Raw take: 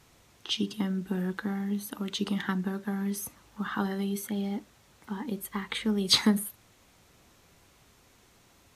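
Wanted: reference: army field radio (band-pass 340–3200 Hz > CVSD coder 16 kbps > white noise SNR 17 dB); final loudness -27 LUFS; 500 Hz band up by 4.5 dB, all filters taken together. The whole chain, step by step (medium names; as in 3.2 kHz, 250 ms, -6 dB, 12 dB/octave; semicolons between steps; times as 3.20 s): band-pass 340–3200 Hz; peaking EQ 500 Hz +8.5 dB; CVSD coder 16 kbps; white noise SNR 17 dB; trim +9 dB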